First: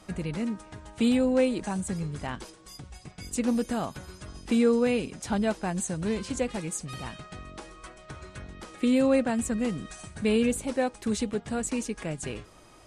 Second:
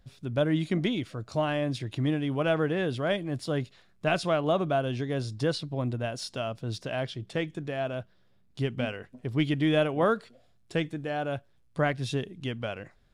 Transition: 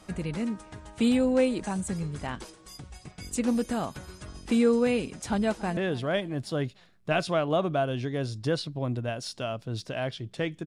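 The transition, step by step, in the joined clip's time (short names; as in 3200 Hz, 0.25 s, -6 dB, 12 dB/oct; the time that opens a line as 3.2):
first
5.28–5.77 echo throw 0.28 s, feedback 50%, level -18 dB
5.77 switch to second from 2.73 s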